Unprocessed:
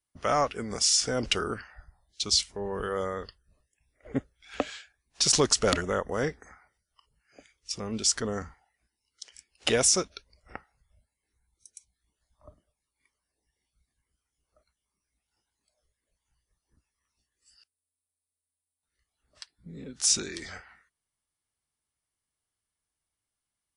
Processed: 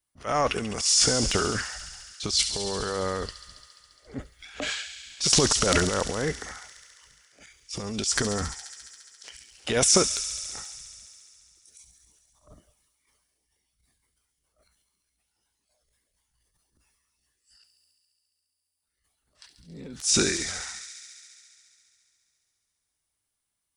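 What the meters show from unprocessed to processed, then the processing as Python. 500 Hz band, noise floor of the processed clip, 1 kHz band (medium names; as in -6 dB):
+1.5 dB, -81 dBFS, +2.0 dB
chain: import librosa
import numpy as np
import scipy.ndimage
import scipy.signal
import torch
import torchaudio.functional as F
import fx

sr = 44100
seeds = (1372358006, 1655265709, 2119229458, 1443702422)

y = fx.high_shelf(x, sr, hz=9100.0, db=4.0)
y = fx.transient(y, sr, attack_db=-11, sustain_db=10)
y = fx.echo_wet_highpass(y, sr, ms=69, feedback_pct=84, hz=2900.0, wet_db=-8.5)
y = y * librosa.db_to_amplitude(2.0)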